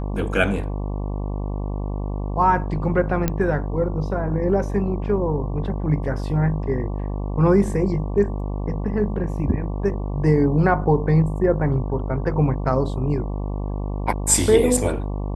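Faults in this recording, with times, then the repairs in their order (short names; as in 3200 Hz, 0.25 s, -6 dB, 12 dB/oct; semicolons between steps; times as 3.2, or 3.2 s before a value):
buzz 50 Hz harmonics 23 -26 dBFS
3.28 pop -7 dBFS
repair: de-click; de-hum 50 Hz, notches 23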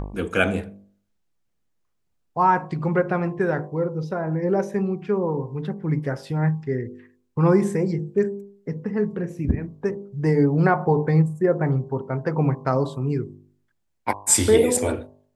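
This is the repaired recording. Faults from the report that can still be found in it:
none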